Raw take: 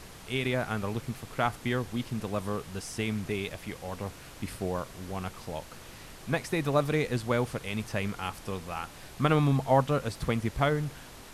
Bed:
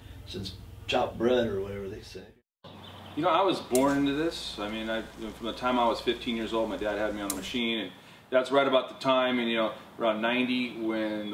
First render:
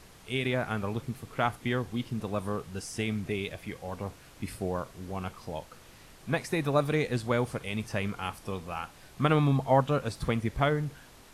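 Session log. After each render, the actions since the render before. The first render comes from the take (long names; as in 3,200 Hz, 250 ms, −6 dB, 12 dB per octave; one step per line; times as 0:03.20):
noise reduction from a noise print 6 dB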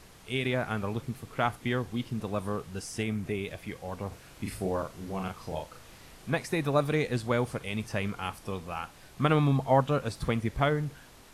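0:03.02–0:03.48: dynamic equaliser 4,000 Hz, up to −6 dB, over −50 dBFS, Q 1
0:04.08–0:06.30: double-tracking delay 37 ms −3.5 dB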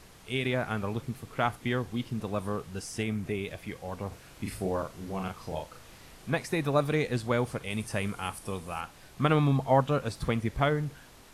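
0:07.70–0:08.81: parametric band 9,500 Hz +10.5 dB 0.53 octaves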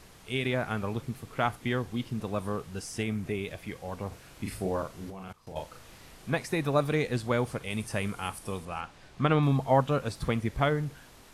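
0:05.10–0:05.56: output level in coarse steps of 21 dB
0:08.65–0:09.43: high-frequency loss of the air 62 metres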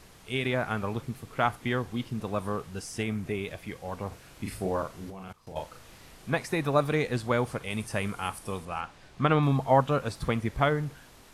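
dynamic equaliser 1,100 Hz, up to +3 dB, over −42 dBFS, Q 0.77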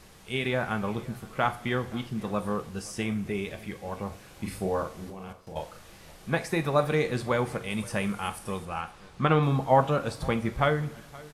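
single-tap delay 522 ms −22 dB
coupled-rooms reverb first 0.33 s, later 1.7 s, DRR 8 dB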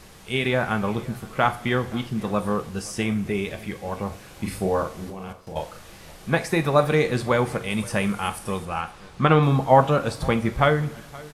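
level +5.5 dB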